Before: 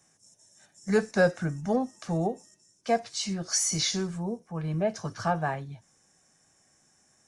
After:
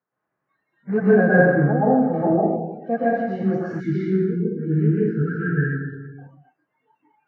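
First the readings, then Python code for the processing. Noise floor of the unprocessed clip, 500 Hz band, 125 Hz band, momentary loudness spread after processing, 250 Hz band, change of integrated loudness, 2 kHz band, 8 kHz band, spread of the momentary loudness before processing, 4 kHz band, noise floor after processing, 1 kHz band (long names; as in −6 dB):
−66 dBFS, +9.0 dB, +11.5 dB, 11 LU, +11.5 dB, +8.5 dB, +10.0 dB, below −35 dB, 10 LU, below −20 dB, −79 dBFS, +7.0 dB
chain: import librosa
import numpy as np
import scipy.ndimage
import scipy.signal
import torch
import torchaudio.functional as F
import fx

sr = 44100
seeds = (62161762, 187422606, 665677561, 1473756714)

y = fx.spec_quant(x, sr, step_db=30)
y = fx.dmg_noise_colour(y, sr, seeds[0], colour='white', level_db=-49.0)
y = fx.rev_plate(y, sr, seeds[1], rt60_s=1.2, hf_ratio=0.75, predelay_ms=105, drr_db=-8.5)
y = fx.spec_erase(y, sr, start_s=3.8, length_s=2.38, low_hz=480.0, high_hz=1300.0)
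y = fx.low_shelf(y, sr, hz=370.0, db=5.0)
y = fx.noise_reduce_blind(y, sr, reduce_db=29)
y = scipy.signal.sosfilt(scipy.signal.cheby1(3, 1.0, [130.0, 1600.0], 'bandpass', fs=sr, output='sos'), y)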